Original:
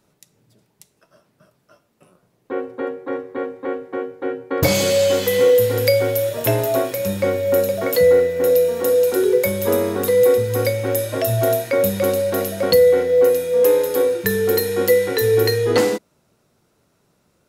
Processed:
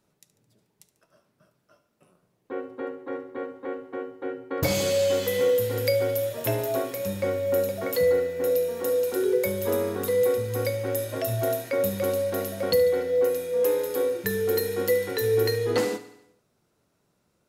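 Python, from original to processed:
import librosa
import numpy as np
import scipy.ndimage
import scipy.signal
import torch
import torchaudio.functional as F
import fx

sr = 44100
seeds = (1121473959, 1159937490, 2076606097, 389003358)

y = fx.echo_feedback(x, sr, ms=72, feedback_pct=57, wet_db=-15)
y = y * 10.0 ** (-8.0 / 20.0)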